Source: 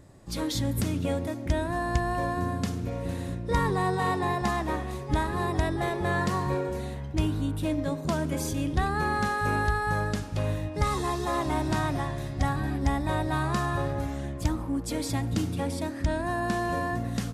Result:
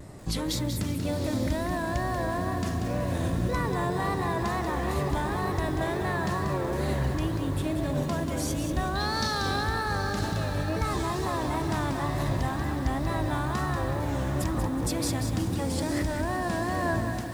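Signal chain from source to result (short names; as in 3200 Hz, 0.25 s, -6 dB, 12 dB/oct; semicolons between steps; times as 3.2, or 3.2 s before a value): ending faded out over 0.81 s; 8.95–9.63 band shelf 4400 Hz +15.5 dB 1 oct; in parallel at +3 dB: negative-ratio compressor -35 dBFS, ratio -0.5; on the sum: wow and flutter 110 cents; on a send: diffused feedback echo 0.839 s, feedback 45%, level -9 dB; on the sum: lo-fi delay 0.187 s, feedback 35%, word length 7-bit, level -6.5 dB; gain -4.5 dB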